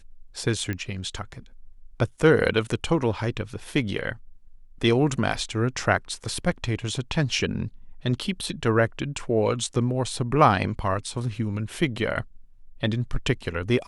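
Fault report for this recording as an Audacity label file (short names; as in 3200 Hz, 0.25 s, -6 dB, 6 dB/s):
0.730000	0.730000	pop -18 dBFS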